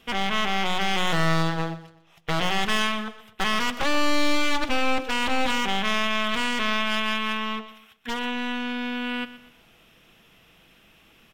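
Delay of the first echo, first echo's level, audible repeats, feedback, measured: 123 ms, −15.0 dB, 3, 36%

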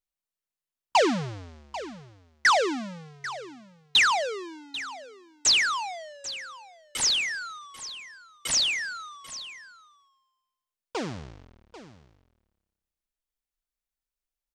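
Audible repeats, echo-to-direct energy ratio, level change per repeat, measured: 1, −15.0 dB, repeats not evenly spaced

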